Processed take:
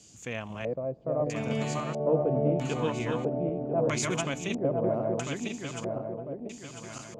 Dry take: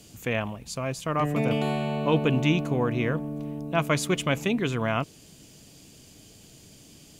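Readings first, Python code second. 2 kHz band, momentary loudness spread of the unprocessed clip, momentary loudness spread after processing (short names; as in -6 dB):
-6.5 dB, 9 LU, 11 LU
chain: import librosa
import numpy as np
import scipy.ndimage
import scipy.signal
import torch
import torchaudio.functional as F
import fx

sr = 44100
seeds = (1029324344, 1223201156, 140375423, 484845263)

y = fx.reverse_delay_fb(x, sr, ms=499, feedback_pct=67, wet_db=-1)
y = scipy.signal.sosfilt(scipy.signal.butter(2, 53.0, 'highpass', fs=sr, output='sos'), y)
y = fx.filter_lfo_lowpass(y, sr, shape='square', hz=0.77, low_hz=580.0, high_hz=6800.0, q=3.6)
y = y * librosa.db_to_amplitude(-8.5)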